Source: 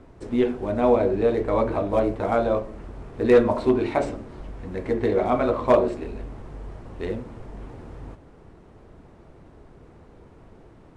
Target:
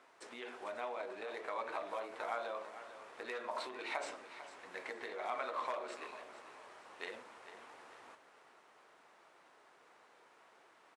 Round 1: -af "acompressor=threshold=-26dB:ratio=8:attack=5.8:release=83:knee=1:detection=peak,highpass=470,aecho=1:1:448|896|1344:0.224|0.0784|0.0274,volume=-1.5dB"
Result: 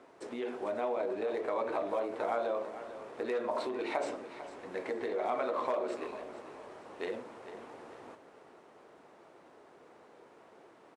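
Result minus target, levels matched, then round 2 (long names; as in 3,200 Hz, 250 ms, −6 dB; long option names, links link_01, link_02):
1,000 Hz band −3.0 dB
-af "acompressor=threshold=-26dB:ratio=8:attack=5.8:release=83:knee=1:detection=peak,highpass=1100,aecho=1:1:448|896|1344:0.224|0.0784|0.0274,volume=-1.5dB"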